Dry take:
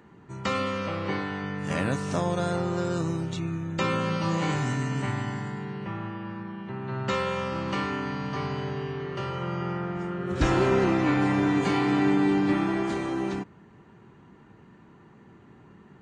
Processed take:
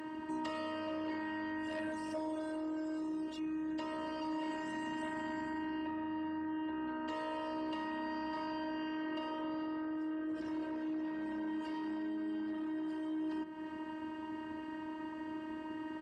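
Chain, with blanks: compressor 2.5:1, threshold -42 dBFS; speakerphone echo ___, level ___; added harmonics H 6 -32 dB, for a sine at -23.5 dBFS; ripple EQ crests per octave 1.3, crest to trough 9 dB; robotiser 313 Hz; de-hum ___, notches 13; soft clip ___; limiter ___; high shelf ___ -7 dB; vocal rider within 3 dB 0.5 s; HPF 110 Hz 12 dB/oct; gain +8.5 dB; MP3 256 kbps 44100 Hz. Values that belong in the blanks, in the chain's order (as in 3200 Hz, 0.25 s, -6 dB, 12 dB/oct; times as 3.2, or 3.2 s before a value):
0.35 s, -21 dB, 181.1 Hz, -32 dBFS, -38 dBFS, 4800 Hz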